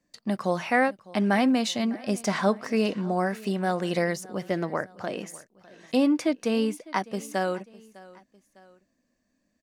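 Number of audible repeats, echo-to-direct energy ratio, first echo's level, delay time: 2, -20.0 dB, -21.0 dB, 0.604 s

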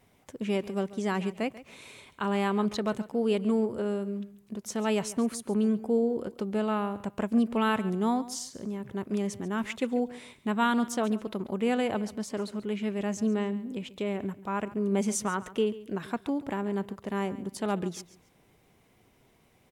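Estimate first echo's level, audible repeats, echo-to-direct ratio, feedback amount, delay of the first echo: -17.0 dB, 2, -17.0 dB, 25%, 0.139 s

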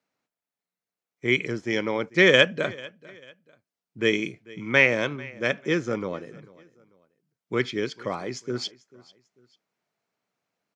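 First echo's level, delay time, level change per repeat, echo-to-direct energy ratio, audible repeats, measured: -22.0 dB, 0.443 s, -9.0 dB, -21.5 dB, 2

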